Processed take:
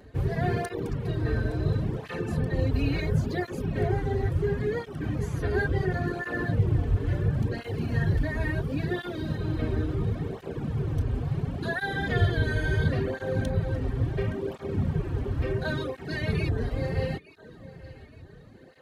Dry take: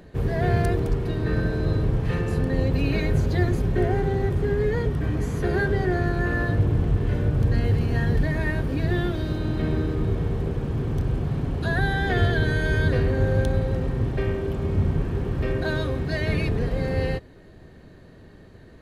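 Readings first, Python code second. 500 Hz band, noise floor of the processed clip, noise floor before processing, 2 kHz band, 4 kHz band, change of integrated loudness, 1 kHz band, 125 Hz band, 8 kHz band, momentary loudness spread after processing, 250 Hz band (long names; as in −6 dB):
−4.5 dB, −49 dBFS, −48 dBFS, −4.0 dB, −4.0 dB, −4.5 dB, −4.0 dB, −4.0 dB, can't be measured, 6 LU, −4.5 dB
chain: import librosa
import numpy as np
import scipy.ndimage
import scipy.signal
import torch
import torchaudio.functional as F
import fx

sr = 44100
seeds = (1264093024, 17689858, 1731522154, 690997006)

y = fx.echo_feedback(x, sr, ms=869, feedback_pct=43, wet_db=-18.0)
y = fx.dereverb_blind(y, sr, rt60_s=0.51)
y = fx.flanger_cancel(y, sr, hz=0.72, depth_ms=6.3)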